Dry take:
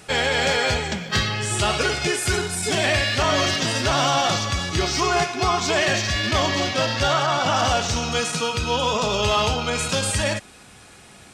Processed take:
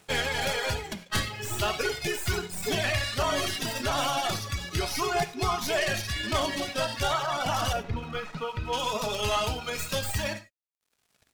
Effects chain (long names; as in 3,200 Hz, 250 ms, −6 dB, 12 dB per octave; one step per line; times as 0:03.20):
stylus tracing distortion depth 0.066 ms
0:07.73–0:08.73: low-pass filter 2,100 Hz 12 dB per octave
reverb reduction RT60 1.2 s
phase shifter 0.38 Hz, delay 3.9 ms, feedback 23%
dead-zone distortion −45 dBFS
reverb whose tail is shaped and stops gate 120 ms flat, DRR 10.5 dB
level −5.5 dB